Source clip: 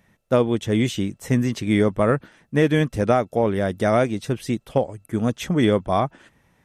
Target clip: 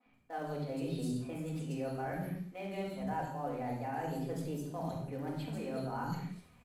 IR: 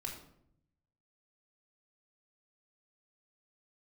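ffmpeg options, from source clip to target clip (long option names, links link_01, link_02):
-filter_complex "[0:a]acrossover=split=240|3200[link_01][link_02][link_03];[link_01]adelay=70[link_04];[link_03]adelay=150[link_05];[link_04][link_02][link_05]amix=inputs=3:normalize=0,areverse,acompressor=threshold=-32dB:ratio=16,areverse,asetrate=55563,aresample=44100,atempo=0.793701,asplit=2[link_06][link_07];[link_07]acrusher=bits=4:mode=log:mix=0:aa=0.000001,volume=-6dB[link_08];[link_06][link_08]amix=inputs=2:normalize=0,adynamicequalizer=threshold=0.002:dfrequency=3000:dqfactor=1.1:tfrequency=3000:tqfactor=1.1:attack=5:release=100:ratio=0.375:range=3:mode=cutabove:tftype=bell[link_09];[1:a]atrim=start_sample=2205,afade=type=out:start_time=0.22:duration=0.01,atrim=end_sample=10143,asetrate=27783,aresample=44100[link_10];[link_09][link_10]afir=irnorm=-1:irlink=0,volume=-8dB"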